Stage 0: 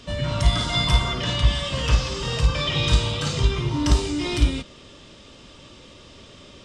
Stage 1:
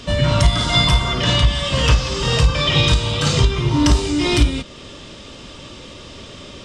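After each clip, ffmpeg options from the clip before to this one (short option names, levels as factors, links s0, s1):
-af "alimiter=limit=0.224:level=0:latency=1:release=409,volume=2.82"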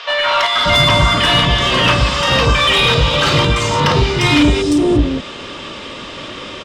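-filter_complex "[0:a]acrossover=split=640|5600[s0][s1][s2];[s2]adelay=350[s3];[s0]adelay=580[s4];[s4][s1][s3]amix=inputs=3:normalize=0,asplit=2[s5][s6];[s6]highpass=f=720:p=1,volume=7.94,asoftclip=type=tanh:threshold=0.708[s7];[s5][s7]amix=inputs=2:normalize=0,lowpass=f=1900:p=1,volume=0.501,volume=1.41"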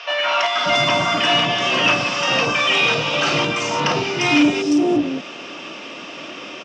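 -af "highpass=f=150:w=0.5412,highpass=f=150:w=1.3066,equalizer=f=310:t=q:w=4:g=6,equalizer=f=710:t=q:w=4:g=9,equalizer=f=1400:t=q:w=4:g=3,equalizer=f=2600:t=q:w=4:g=9,equalizer=f=3900:t=q:w=4:g=-5,equalizer=f=5700:t=q:w=4:g=9,lowpass=f=7200:w=0.5412,lowpass=f=7200:w=1.3066,volume=0.422"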